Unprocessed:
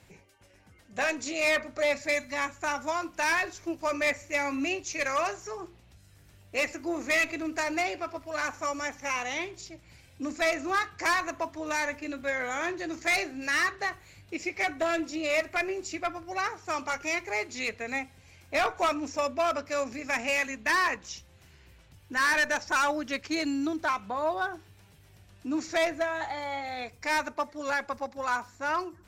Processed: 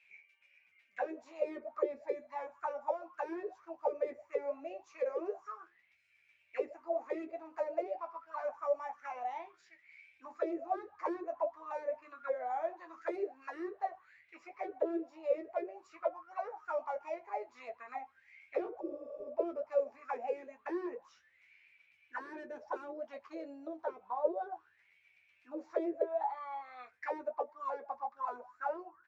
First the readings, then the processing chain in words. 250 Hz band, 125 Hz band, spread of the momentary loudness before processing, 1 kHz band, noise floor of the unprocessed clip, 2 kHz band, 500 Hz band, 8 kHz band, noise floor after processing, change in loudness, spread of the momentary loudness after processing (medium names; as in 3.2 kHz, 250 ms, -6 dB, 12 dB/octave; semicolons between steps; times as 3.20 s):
-10.5 dB, under -25 dB, 9 LU, -9.0 dB, -57 dBFS, -22.5 dB, -4.5 dB, under -30 dB, -71 dBFS, -10.0 dB, 11 LU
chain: auto-wah 360–2500 Hz, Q 14, down, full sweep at -23.5 dBFS; early reflections 12 ms -5.5 dB, 25 ms -13 dB; spectral replace 18.82–19.26 s, 430–9000 Hz after; trim +6.5 dB